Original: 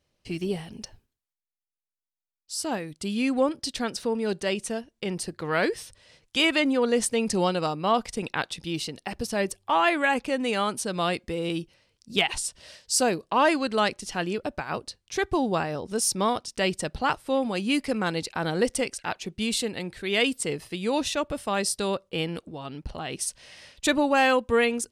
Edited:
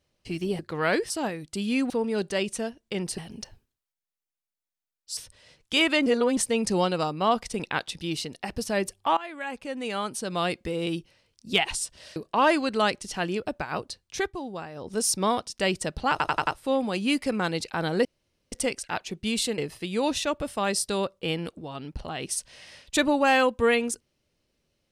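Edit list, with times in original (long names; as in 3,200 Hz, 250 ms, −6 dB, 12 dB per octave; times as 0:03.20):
0:00.59–0:02.58: swap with 0:05.29–0:05.80
0:03.38–0:04.01: remove
0:06.69–0:07.00: reverse
0:09.80–0:11.21: fade in, from −19.5 dB
0:12.79–0:13.14: remove
0:15.17–0:15.88: duck −10.5 dB, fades 0.15 s
0:17.09: stutter 0.09 s, 5 plays
0:18.67: splice in room tone 0.47 s
0:19.73–0:20.48: remove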